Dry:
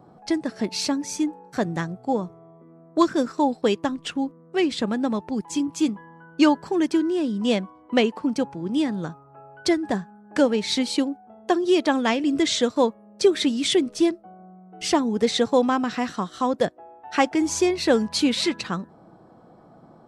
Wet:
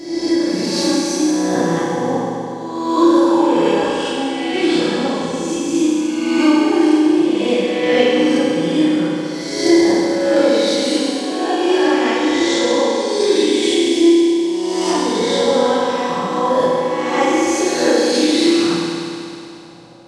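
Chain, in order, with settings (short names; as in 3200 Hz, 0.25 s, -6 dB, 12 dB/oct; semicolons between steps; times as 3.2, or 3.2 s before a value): spectral swells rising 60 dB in 1.25 s; in parallel at +0.5 dB: vocal rider 2 s; on the sum: reverb RT60 2.8 s, pre-delay 3 ms, DRR -7 dB; gain -12.5 dB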